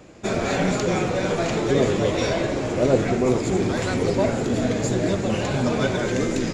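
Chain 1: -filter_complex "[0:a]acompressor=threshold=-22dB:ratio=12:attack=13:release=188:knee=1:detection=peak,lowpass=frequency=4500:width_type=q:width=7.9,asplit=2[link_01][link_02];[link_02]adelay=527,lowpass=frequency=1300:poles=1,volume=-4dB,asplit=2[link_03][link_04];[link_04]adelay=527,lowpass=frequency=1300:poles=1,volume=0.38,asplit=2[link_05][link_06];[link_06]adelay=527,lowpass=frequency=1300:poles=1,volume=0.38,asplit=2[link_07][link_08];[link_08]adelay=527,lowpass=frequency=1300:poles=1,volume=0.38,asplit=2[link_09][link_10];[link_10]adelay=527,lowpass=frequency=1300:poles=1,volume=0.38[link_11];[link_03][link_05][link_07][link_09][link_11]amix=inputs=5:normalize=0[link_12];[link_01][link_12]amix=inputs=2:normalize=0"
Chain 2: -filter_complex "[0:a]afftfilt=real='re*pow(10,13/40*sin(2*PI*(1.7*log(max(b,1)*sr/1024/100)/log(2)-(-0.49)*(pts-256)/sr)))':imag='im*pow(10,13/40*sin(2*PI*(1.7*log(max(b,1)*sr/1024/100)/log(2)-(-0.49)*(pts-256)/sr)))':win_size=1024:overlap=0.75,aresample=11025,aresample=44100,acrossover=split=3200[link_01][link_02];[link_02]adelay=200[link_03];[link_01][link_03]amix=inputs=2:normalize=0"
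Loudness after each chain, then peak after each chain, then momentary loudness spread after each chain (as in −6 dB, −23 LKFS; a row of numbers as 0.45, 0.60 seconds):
−23.5, −21.0 LKFS; −5.5, −4.5 dBFS; 1, 4 LU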